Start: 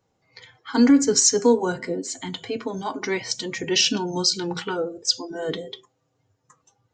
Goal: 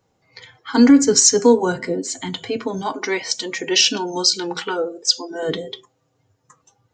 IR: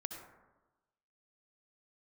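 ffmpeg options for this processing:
-filter_complex "[0:a]asettb=1/sr,asplit=3[link_01][link_02][link_03];[link_01]atrim=end=2.924[link_04];[link_02]atrim=start=2.92:end=5.43,asetpts=PTS-STARTPTS,afade=type=in:duration=0.004:curve=qsin,afade=type=out:start_time=2.506:duration=0.004:curve=qsin,highpass=310[link_05];[link_03]atrim=start=5.426[link_06];[link_04][link_05]acrossfade=duration=0.004:curve1=hsin:curve2=qsin[link_07];[link_07][link_06]acrossfade=duration=0.004:curve1=qsin:curve2=hsin,volume=4.5dB"

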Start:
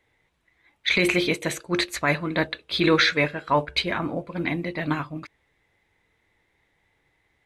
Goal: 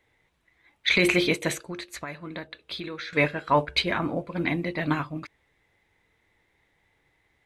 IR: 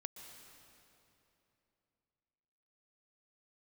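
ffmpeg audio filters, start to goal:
-filter_complex "[0:a]asettb=1/sr,asplit=3[link_01][link_02][link_03];[link_01]atrim=end=1.544[link_04];[link_02]atrim=start=1.54:end=3.13,asetpts=PTS-STARTPTS,afade=type=in:duration=0.004:curve=qsin,afade=type=out:start_time=1.586:duration=0.004:curve=qsin,acompressor=threshold=-33dB:ratio=16[link_05];[link_03]atrim=start=3.126[link_06];[link_04][link_05]acrossfade=duration=0.004:curve1=hsin:curve2=qsin[link_07];[link_07][link_06]acrossfade=duration=0.004:curve1=qsin:curve2=hsin"

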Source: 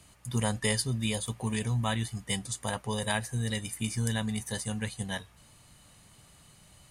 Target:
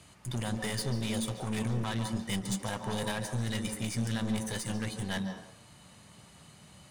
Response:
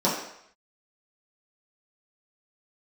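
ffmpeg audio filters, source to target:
-filter_complex "[0:a]highpass=77,highshelf=frequency=11000:gain=-12,alimiter=limit=-22.5dB:level=0:latency=1:release=71,aeval=exprs='(tanh(56.2*val(0)+0.55)-tanh(0.55))/56.2':channel_layout=same,asplit=2[link_01][link_02];[1:a]atrim=start_sample=2205,adelay=141[link_03];[link_02][link_03]afir=irnorm=-1:irlink=0,volume=-22dB[link_04];[link_01][link_04]amix=inputs=2:normalize=0,volume=5.5dB"

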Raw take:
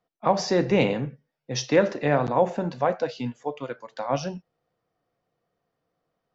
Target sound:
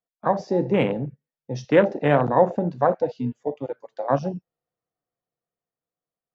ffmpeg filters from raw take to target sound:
ffmpeg -i in.wav -af "afwtdn=0.0447,dynaudnorm=framelen=320:gausssize=9:maxgain=5dB" out.wav

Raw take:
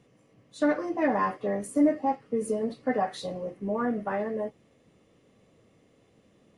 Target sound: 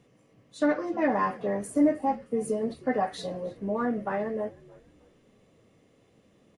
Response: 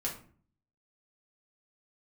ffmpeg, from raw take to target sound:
-filter_complex "[0:a]asettb=1/sr,asplit=3[link_01][link_02][link_03];[link_01]atrim=end=0.664[link_04];[link_02]atrim=start=0.66:end=1.1,asetpts=PTS-STARTPTS,afade=type=in:duration=0.004:curve=qsin,afade=type=out:start_time=0.436:duration=0.004:curve=qsin,lowpass=7200[link_05];[link_03]atrim=start=1.096[link_06];[link_04][link_05]acrossfade=duration=0.004:curve1=hsin:curve2=qsin[link_07];[link_07][link_06]acrossfade=duration=0.004:curve1=qsin:curve2=hsin,asplit=4[link_08][link_09][link_10][link_11];[link_09]adelay=311,afreqshift=-72,volume=-22dB[link_12];[link_10]adelay=622,afreqshift=-144,volume=-30.4dB[link_13];[link_11]adelay=933,afreqshift=-216,volume=-38.8dB[link_14];[link_08][link_12][link_13][link_14]amix=inputs=4:normalize=0"

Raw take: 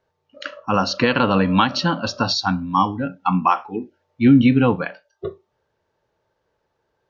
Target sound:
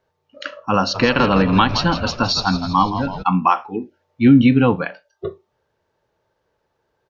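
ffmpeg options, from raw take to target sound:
ffmpeg -i in.wav -filter_complex "[0:a]asplit=3[link_01][link_02][link_03];[link_01]afade=type=out:start_time=0.94:duration=0.02[link_04];[link_02]asplit=8[link_05][link_06][link_07][link_08][link_09][link_10][link_11][link_12];[link_06]adelay=165,afreqshift=-86,volume=-10.5dB[link_13];[link_07]adelay=330,afreqshift=-172,volume=-15.4dB[link_14];[link_08]adelay=495,afreqshift=-258,volume=-20.3dB[link_15];[link_09]adelay=660,afreqshift=-344,volume=-25.1dB[link_16];[link_10]adelay=825,afreqshift=-430,volume=-30dB[link_17];[link_11]adelay=990,afreqshift=-516,volume=-34.9dB[link_18];[link_12]adelay=1155,afreqshift=-602,volume=-39.8dB[link_19];[link_05][link_13][link_14][link_15][link_16][link_17][link_18][link_19]amix=inputs=8:normalize=0,afade=type=in:start_time=0.94:duration=0.02,afade=type=out:start_time=3.22:duration=0.02[link_20];[link_03]afade=type=in:start_time=3.22:duration=0.02[link_21];[link_04][link_20][link_21]amix=inputs=3:normalize=0,volume=1.5dB" out.wav

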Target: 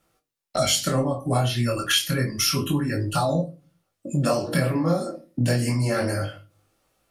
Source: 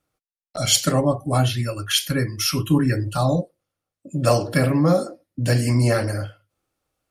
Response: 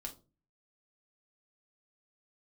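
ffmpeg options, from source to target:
-filter_complex "[0:a]acompressor=threshold=-29dB:ratio=6,flanger=delay=18.5:depth=6.5:speed=0.29,asplit=2[link_01][link_02];[1:a]atrim=start_sample=2205,lowshelf=frequency=93:gain=-10.5[link_03];[link_02][link_03]afir=irnorm=-1:irlink=0,volume=3dB[link_04];[link_01][link_04]amix=inputs=2:normalize=0,volume=7dB"

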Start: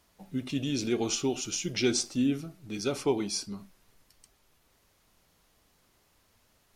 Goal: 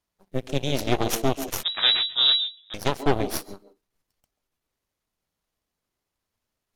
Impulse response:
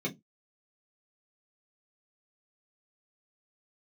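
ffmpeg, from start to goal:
-filter_complex "[0:a]aeval=exprs='0.188*(cos(1*acos(clip(val(0)/0.188,-1,1)))-cos(1*PI/2))+0.075*(cos(4*acos(clip(val(0)/0.188,-1,1)))-cos(4*PI/2))+0.0237*(cos(7*acos(clip(val(0)/0.188,-1,1)))-cos(7*PI/2))+0.0119*(cos(8*acos(clip(val(0)/0.188,-1,1)))-cos(8*PI/2))':channel_layout=same,asplit=2[link_01][link_02];[1:a]atrim=start_sample=2205,asetrate=79380,aresample=44100,adelay=134[link_03];[link_02][link_03]afir=irnorm=-1:irlink=0,volume=-17dB[link_04];[link_01][link_04]amix=inputs=2:normalize=0,asettb=1/sr,asplit=3[link_05][link_06][link_07];[link_05]atrim=end=1.634[link_08];[link_06]atrim=start=1.63:end=2.74,asetpts=PTS-STARTPTS,afade=type=in:duration=0.004:curve=qsin,afade=type=out:start_time=1.106:duration=0.004:curve=qsin,lowpass=frequency=3300:width_type=q:width=0.5098,lowpass=frequency=3300:width_type=q:width=0.6013,lowpass=frequency=3300:width_type=q:width=0.9,lowpass=frequency=3300:width_type=q:width=2.563,afreqshift=-3900[link_09];[link_07]atrim=start=2.736[link_10];[link_08][link_09]acrossfade=duration=0.004:curve1=hsin:curve2=qsin[link_11];[link_11][link_10]acrossfade=duration=0.004:curve1=qsin:curve2=hsin,volume=2.5dB"

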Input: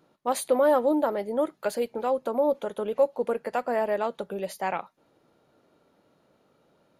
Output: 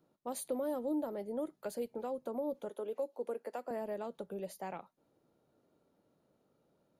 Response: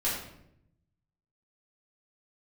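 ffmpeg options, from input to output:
-filter_complex "[0:a]acrossover=split=380|3000[link_01][link_02][link_03];[link_02]acompressor=threshold=-28dB:ratio=6[link_04];[link_01][link_04][link_03]amix=inputs=3:normalize=0,asettb=1/sr,asplit=3[link_05][link_06][link_07];[link_05]atrim=end=2.694[link_08];[link_06]atrim=start=2.69:end=3.71,asetpts=PTS-STARTPTS,afade=type=in:duration=0.004:curve=qsin,afade=type=out:start_time=1.016:duration=0.004:curve=qsin,highpass=frequency=270:width=0.5412,highpass=frequency=270:width=1.3066[link_09];[link_07]atrim=start=3.706[link_10];[link_08][link_09]acrossfade=duration=0.004:curve1=hsin:curve2=qsin[link_11];[link_11][link_10]acrossfade=duration=0.004:curve1=qsin:curve2=hsin,equalizer=frequency=2200:width=0.38:gain=-8,volume=-7dB"

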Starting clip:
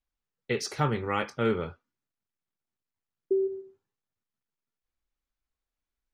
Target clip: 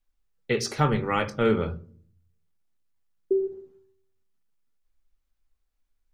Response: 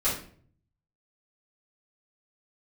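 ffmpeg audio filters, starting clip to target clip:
-filter_complex "[0:a]asplit=2[link_01][link_02];[link_02]aemphasis=mode=reproduction:type=bsi[link_03];[1:a]atrim=start_sample=2205,lowpass=1200[link_04];[link_03][link_04]afir=irnorm=-1:irlink=0,volume=-23dB[link_05];[link_01][link_05]amix=inputs=2:normalize=0,volume=3.5dB"

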